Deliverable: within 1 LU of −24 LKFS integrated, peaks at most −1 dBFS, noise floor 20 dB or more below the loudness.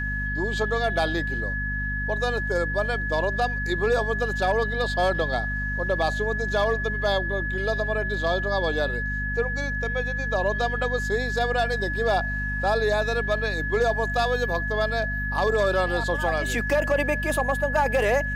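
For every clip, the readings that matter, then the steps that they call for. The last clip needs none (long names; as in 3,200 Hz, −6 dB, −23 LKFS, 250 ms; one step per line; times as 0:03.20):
mains hum 50 Hz; hum harmonics up to 250 Hz; level of the hum −28 dBFS; interfering tone 1,700 Hz; level of the tone −28 dBFS; integrated loudness −24.5 LKFS; sample peak −12.0 dBFS; target loudness −24.0 LKFS
→ hum removal 50 Hz, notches 5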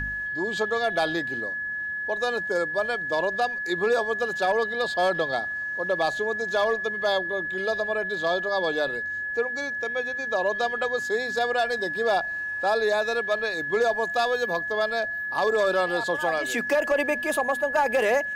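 mains hum none found; interfering tone 1,700 Hz; level of the tone −28 dBFS
→ notch filter 1,700 Hz, Q 30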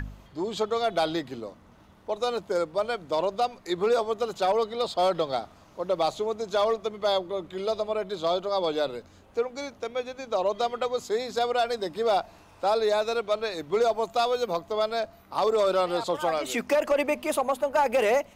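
interfering tone none found; integrated loudness −27.5 LKFS; sample peak −15.5 dBFS; target loudness −24.0 LKFS
→ level +3.5 dB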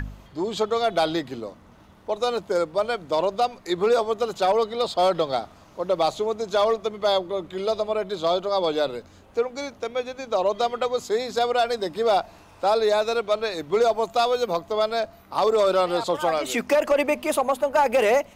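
integrated loudness −24.0 LKFS; sample peak −12.0 dBFS; background noise floor −51 dBFS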